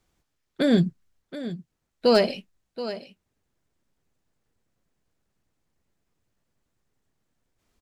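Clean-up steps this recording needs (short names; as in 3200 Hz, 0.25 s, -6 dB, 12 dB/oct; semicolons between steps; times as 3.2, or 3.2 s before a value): clip repair -10 dBFS; inverse comb 0.727 s -13.5 dB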